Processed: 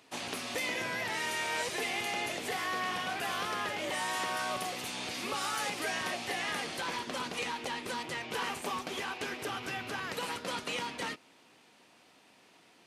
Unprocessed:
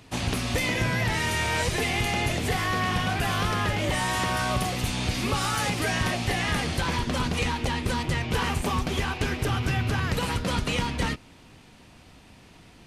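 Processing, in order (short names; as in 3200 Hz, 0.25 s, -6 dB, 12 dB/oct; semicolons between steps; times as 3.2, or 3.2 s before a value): HPF 340 Hz 12 dB/oct; gain -6.5 dB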